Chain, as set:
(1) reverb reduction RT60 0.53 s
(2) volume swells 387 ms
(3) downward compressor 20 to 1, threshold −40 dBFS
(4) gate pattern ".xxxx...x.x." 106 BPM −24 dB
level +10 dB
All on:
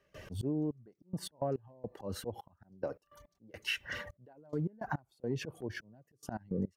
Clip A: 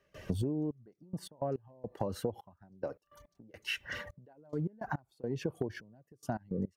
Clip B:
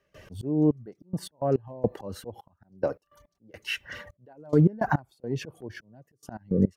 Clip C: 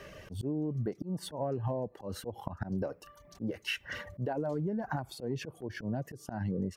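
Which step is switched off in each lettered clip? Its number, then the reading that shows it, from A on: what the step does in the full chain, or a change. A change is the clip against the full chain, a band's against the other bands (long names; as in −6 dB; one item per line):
2, change in crest factor +2.5 dB
3, average gain reduction 6.0 dB
4, 4 kHz band −3.0 dB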